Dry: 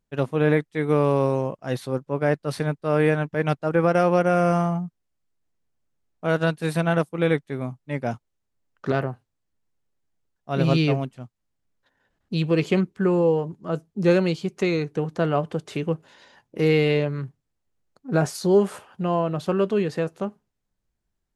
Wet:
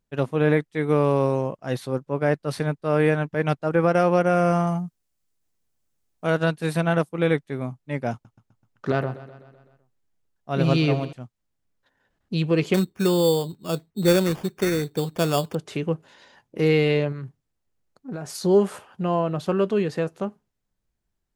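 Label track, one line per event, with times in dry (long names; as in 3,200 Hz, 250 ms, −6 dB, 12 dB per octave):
4.670000	6.300000	high-shelf EQ 4,400 Hz +10.5 dB
8.120000	11.130000	repeating echo 127 ms, feedback 59%, level −16 dB
12.740000	15.550000	sample-rate reduction 4,000 Hz
17.120000	18.300000	downward compressor, threshold −29 dBFS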